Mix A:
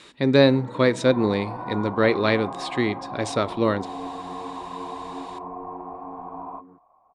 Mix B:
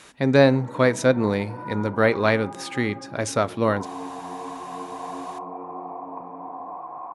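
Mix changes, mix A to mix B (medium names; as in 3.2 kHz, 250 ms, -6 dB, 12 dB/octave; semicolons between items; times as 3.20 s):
speech: remove cabinet simulation 160–8300 Hz, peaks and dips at 350 Hz +5 dB, 730 Hz -7 dB, 1.5 kHz -4 dB, 3.8 kHz +6 dB, 6.2 kHz -8 dB; second sound: entry +2.65 s; master: add high-pass 140 Hz 12 dB/octave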